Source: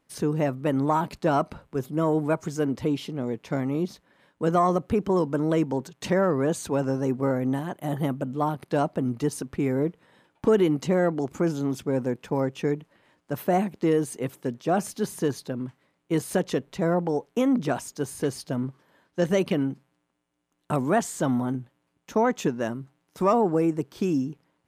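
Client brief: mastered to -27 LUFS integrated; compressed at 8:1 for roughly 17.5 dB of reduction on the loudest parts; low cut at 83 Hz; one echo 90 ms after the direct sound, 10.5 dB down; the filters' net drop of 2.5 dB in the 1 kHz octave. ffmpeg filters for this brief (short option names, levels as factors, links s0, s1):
-af "highpass=83,equalizer=f=1000:t=o:g=-3.5,acompressor=threshold=0.0158:ratio=8,aecho=1:1:90:0.299,volume=4.73"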